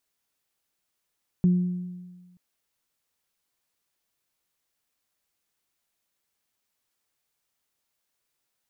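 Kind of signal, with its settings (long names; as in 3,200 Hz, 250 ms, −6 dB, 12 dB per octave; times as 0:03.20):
harmonic partials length 0.93 s, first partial 179 Hz, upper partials −18 dB, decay 1.43 s, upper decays 1.03 s, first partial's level −15 dB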